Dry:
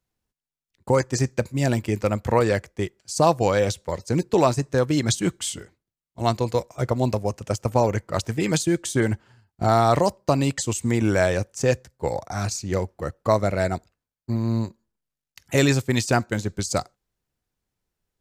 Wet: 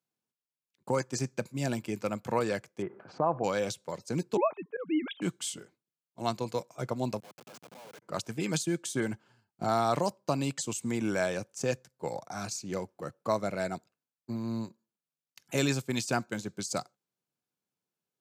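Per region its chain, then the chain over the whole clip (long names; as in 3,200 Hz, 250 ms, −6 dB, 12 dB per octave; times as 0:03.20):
0:02.82–0:03.44: low-pass filter 1,500 Hz 24 dB per octave + low-shelf EQ 290 Hz −8 dB + envelope flattener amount 50%
0:04.37–0:05.22: three sine waves on the formant tracks + volume swells 131 ms
0:07.20–0:08.02: Bessel high-pass filter 760 Hz, order 8 + downward compressor 5 to 1, threshold −36 dBFS + comparator with hysteresis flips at −45 dBFS
whole clip: high-pass filter 140 Hz 24 dB per octave; notch filter 1,900 Hz, Q 7.9; dynamic equaliser 470 Hz, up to −3 dB, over −32 dBFS, Q 0.83; level −7 dB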